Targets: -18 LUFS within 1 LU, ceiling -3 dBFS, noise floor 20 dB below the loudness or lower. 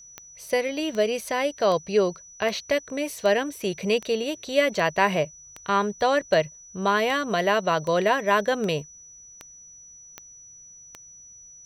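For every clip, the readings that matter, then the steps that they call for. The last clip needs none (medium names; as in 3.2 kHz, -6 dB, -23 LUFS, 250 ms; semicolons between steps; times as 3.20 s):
clicks found 15; steady tone 5.9 kHz; tone level -45 dBFS; loudness -24.5 LUFS; peak level -6.0 dBFS; loudness target -18.0 LUFS
-> de-click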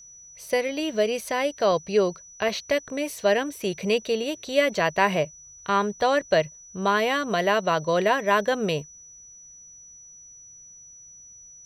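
clicks found 0; steady tone 5.9 kHz; tone level -45 dBFS
-> band-stop 5.9 kHz, Q 30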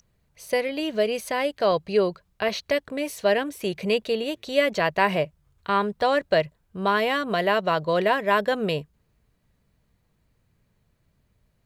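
steady tone not found; loudness -24.5 LUFS; peak level -6.0 dBFS; loudness target -18.0 LUFS
-> trim +6.5 dB; peak limiter -3 dBFS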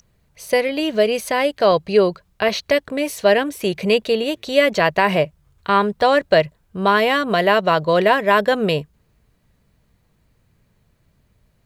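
loudness -18.0 LUFS; peak level -3.0 dBFS; noise floor -62 dBFS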